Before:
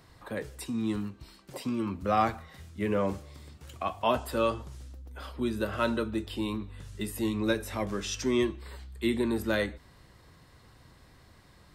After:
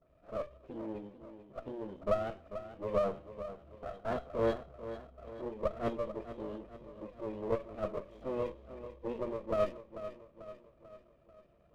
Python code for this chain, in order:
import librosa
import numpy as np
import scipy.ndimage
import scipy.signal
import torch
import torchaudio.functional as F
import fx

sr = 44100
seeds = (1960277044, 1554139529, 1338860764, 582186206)

p1 = fx.spec_delay(x, sr, highs='late', ms=214)
p2 = fx.formant_cascade(p1, sr, vowel='e')
p3 = fx.band_shelf(p2, sr, hz=1200.0, db=-10.0, octaves=1.7)
p4 = fx.formant_shift(p3, sr, semitones=4)
p5 = fx.air_absorb(p4, sr, metres=380.0)
p6 = p5 + fx.echo_feedback(p5, sr, ms=441, feedback_pct=51, wet_db=-12.0, dry=0)
p7 = fx.running_max(p6, sr, window=17)
y = p7 * librosa.db_to_amplitude(7.5)